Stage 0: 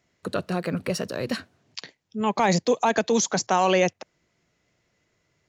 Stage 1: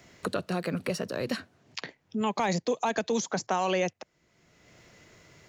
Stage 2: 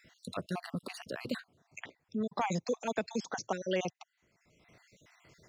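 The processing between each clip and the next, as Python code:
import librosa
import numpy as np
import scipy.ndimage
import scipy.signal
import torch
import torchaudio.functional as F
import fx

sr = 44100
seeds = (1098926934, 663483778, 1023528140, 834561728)

y1 = fx.band_squash(x, sr, depth_pct=70)
y1 = F.gain(torch.from_numpy(y1), -6.0).numpy()
y2 = fx.spec_dropout(y1, sr, seeds[0], share_pct=48)
y2 = F.gain(torch.from_numpy(y2), -3.5).numpy()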